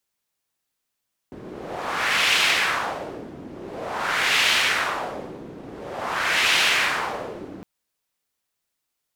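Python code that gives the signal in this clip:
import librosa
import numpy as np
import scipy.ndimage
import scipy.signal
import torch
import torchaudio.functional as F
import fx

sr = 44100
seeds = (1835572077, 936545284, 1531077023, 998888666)

y = fx.wind(sr, seeds[0], length_s=6.31, low_hz=290.0, high_hz=2700.0, q=1.6, gusts=3, swing_db=19.5)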